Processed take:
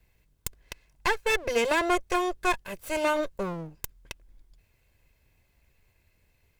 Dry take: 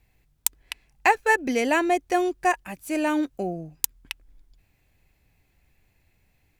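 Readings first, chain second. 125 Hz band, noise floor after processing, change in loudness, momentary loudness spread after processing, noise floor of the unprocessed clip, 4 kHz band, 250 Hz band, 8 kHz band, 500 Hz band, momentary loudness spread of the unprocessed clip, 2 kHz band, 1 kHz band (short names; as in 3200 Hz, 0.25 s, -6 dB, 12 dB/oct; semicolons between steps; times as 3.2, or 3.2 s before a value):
0.0 dB, -68 dBFS, -4.0 dB, 21 LU, -67 dBFS, +1.0 dB, -7.0 dB, -7.0 dB, -1.5 dB, 18 LU, -4.0 dB, -5.0 dB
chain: minimum comb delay 1.9 ms; limiter -15 dBFS, peak gain reduction 11 dB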